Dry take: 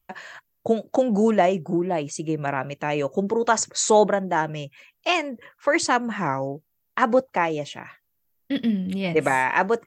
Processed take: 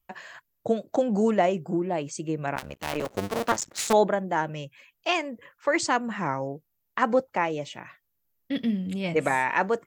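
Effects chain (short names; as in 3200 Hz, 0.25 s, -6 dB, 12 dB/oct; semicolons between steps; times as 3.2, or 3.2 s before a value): 2.55–3.93 cycle switcher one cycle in 2, muted; 8.67–9.23 bell 7500 Hz +7 dB 0.39 oct; gain -3.5 dB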